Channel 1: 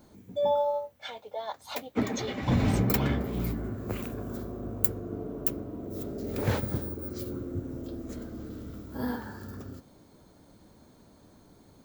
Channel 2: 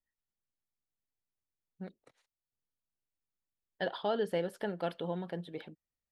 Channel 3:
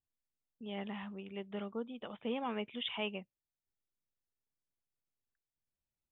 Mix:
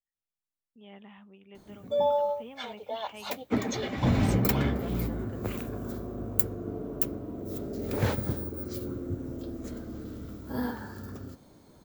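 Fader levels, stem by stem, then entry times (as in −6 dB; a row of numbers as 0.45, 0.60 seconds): +0.5, −9.5, −8.0 decibels; 1.55, 0.00, 0.15 seconds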